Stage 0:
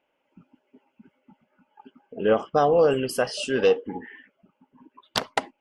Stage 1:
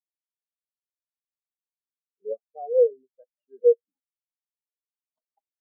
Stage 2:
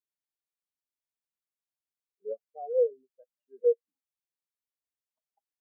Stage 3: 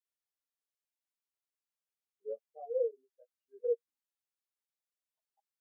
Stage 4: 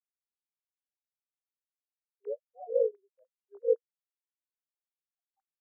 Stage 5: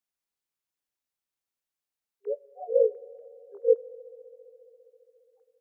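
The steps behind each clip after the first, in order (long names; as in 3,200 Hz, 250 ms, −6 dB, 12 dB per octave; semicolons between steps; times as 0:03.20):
every bin expanded away from the loudest bin 4 to 1
dynamic equaliser 470 Hz, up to −3 dB, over −30 dBFS, Q 3; level −3.5 dB
high-pass filter 360 Hz 12 dB per octave; string-ensemble chorus
three sine waves on the formant tracks; level +5 dB
convolution reverb RT60 4.1 s, pre-delay 3 ms, DRR 19 dB; level +5 dB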